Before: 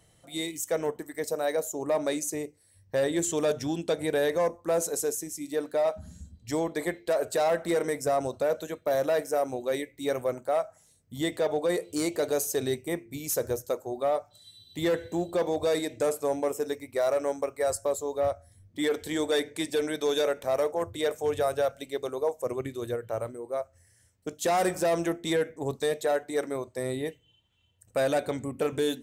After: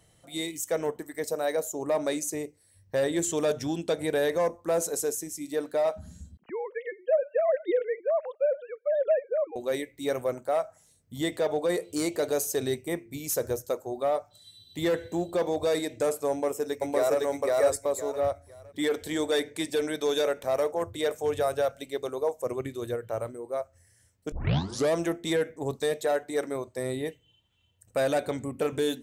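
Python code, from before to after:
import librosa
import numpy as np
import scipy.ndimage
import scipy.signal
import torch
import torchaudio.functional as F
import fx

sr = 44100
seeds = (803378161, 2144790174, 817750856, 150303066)

y = fx.sine_speech(x, sr, at=(6.37, 9.56))
y = fx.echo_throw(y, sr, start_s=16.3, length_s=0.89, ms=510, feedback_pct=25, wet_db=0.0)
y = fx.edit(y, sr, fx.tape_start(start_s=24.32, length_s=0.62), tone=tone)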